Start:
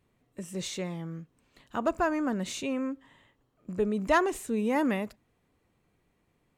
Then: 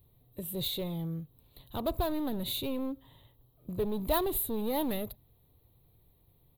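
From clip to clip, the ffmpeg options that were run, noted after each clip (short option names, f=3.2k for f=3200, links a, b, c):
-filter_complex "[0:a]asplit=2[a][b];[b]aeval=exprs='0.0299*(abs(mod(val(0)/0.0299+3,4)-2)-1)':c=same,volume=-3.5dB[c];[a][c]amix=inputs=2:normalize=0,firequalizer=gain_entry='entry(130,0);entry(190,-14);entry(420,-10);entry(920,-12);entry(1500,-23);entry(2700,-17);entry(3800,-2);entry(5600,-29);entry(8300,-16);entry(12000,10)':delay=0.05:min_phase=1,volume=6.5dB"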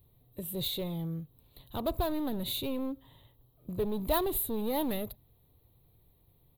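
-af anull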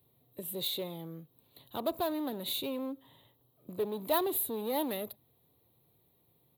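-filter_complex "[0:a]highpass=170,acrossover=split=240|1500|4900[a][b][c][d];[a]acompressor=threshold=-50dB:ratio=6[e];[e][b][c][d]amix=inputs=4:normalize=0"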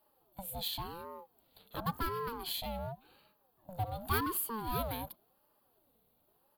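-af "aeval=exprs='val(0)*sin(2*PI*530*n/s+530*0.4/0.91*sin(2*PI*0.91*n/s))':c=same"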